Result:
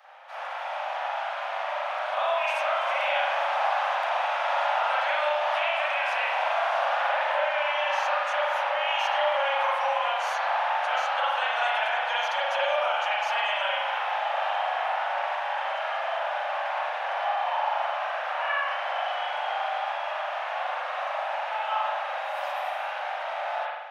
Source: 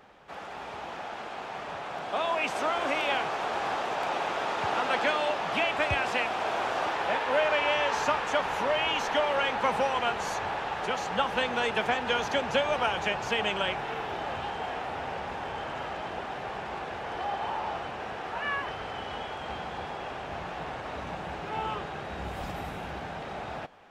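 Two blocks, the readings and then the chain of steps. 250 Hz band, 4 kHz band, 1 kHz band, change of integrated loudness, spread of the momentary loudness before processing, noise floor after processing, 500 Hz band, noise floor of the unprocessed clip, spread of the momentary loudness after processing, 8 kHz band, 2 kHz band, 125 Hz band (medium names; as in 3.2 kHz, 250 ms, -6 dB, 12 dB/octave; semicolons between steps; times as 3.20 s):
under -35 dB, +1.5 dB, +4.5 dB, +3.0 dB, 11 LU, -33 dBFS, +1.5 dB, -39 dBFS, 6 LU, no reading, +3.5 dB, under -40 dB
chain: steep high-pass 550 Hz 96 dB/octave; peaking EQ 7.5 kHz -8 dB 0.21 oct; compression 6:1, threshold -30 dBFS, peak gain reduction 9 dB; spring tank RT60 1.1 s, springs 40 ms, chirp 60 ms, DRR -7 dB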